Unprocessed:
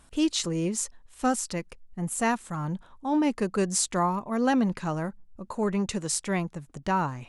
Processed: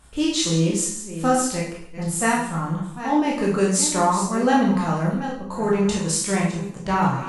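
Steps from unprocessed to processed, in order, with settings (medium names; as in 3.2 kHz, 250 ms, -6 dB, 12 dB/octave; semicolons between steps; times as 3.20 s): chunks repeated in reverse 443 ms, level -11 dB; reverberation RT60 0.65 s, pre-delay 13 ms, DRR -4 dB; trim +1 dB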